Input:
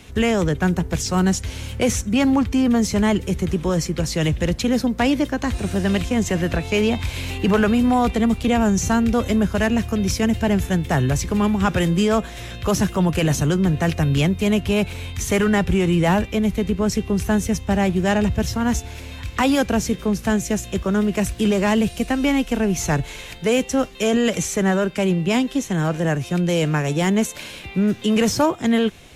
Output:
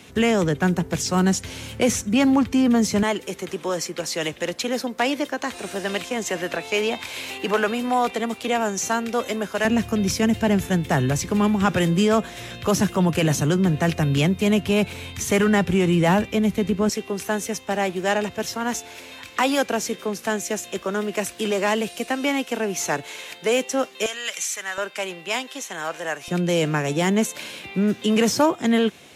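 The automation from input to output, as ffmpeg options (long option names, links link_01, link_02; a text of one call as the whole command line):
ffmpeg -i in.wav -af "asetnsamples=nb_out_samples=441:pad=0,asendcmd='3.03 highpass f 410;9.65 highpass f 130;16.89 highpass f 360;24.06 highpass f 1500;24.78 highpass f 720;26.28 highpass f 180',highpass=140" out.wav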